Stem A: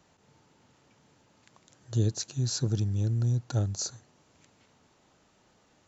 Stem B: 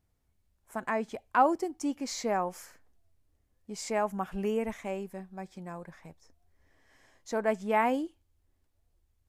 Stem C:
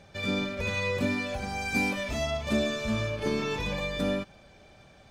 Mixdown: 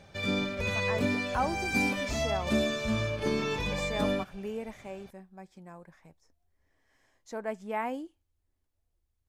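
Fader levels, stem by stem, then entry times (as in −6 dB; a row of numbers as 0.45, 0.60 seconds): muted, −6.5 dB, −0.5 dB; muted, 0.00 s, 0.00 s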